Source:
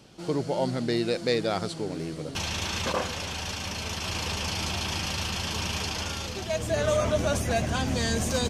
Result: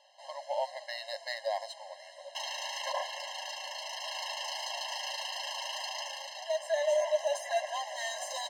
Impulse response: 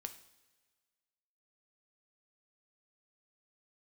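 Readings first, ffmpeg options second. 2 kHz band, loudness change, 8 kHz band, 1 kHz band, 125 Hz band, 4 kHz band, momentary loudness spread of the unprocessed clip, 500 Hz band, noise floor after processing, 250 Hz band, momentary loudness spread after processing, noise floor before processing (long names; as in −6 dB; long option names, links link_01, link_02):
−6.5 dB, −6.5 dB, −7.5 dB, −3.5 dB, below −40 dB, −5.5 dB, 6 LU, −5.0 dB, −52 dBFS, below −40 dB, 9 LU, −38 dBFS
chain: -af "adynamicsmooth=sensitivity=5.5:basefreq=7300,afftfilt=real='re*eq(mod(floor(b*sr/1024/540),2),1)':imag='im*eq(mod(floor(b*sr/1024/540),2),1)':win_size=1024:overlap=0.75,volume=-2dB"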